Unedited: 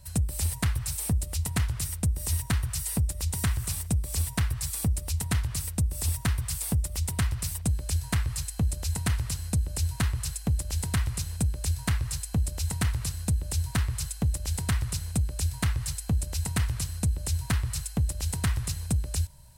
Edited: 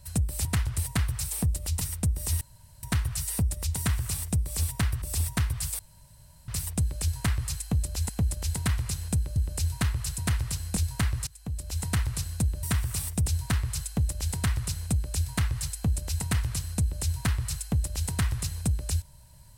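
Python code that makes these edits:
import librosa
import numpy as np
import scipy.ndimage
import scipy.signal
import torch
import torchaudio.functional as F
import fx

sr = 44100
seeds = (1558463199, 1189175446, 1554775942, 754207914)

y = fx.edit(x, sr, fx.move(start_s=1.48, length_s=0.33, to_s=0.45),
    fx.insert_room_tone(at_s=2.41, length_s=0.42),
    fx.duplicate(start_s=3.36, length_s=0.63, to_s=13.51),
    fx.cut(start_s=4.6, length_s=1.3),
    fx.room_tone_fill(start_s=6.67, length_s=0.69),
    fx.swap(start_s=8.97, length_s=0.58, other_s=10.37, other_length_s=1.27),
    fx.fade_in_from(start_s=12.15, length_s=0.63, floor_db=-23.0), tone=tone)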